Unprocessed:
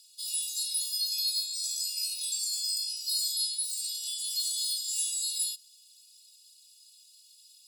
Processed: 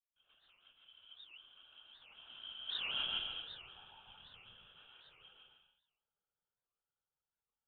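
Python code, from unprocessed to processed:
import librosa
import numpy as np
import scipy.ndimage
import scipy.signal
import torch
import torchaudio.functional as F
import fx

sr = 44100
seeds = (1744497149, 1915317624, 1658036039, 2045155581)

p1 = fx.tracing_dist(x, sr, depth_ms=0.15)
p2 = fx.doppler_pass(p1, sr, speed_mps=44, closest_m=7.1, pass_at_s=2.9)
p3 = fx.vowel_filter(p2, sr, vowel='a')
p4 = p3 + fx.echo_single(p3, sr, ms=152, db=-4.0, dry=0)
p5 = fx.whisperise(p4, sr, seeds[0])
p6 = fx.high_shelf(p5, sr, hz=2500.0, db=-7.0)
p7 = fx.rev_plate(p6, sr, seeds[1], rt60_s=0.77, hf_ratio=0.7, predelay_ms=110, drr_db=1.5)
p8 = fx.freq_invert(p7, sr, carrier_hz=3900)
p9 = fx.record_warp(p8, sr, rpm=78.0, depth_cents=250.0)
y = p9 * librosa.db_to_amplitude(9.5)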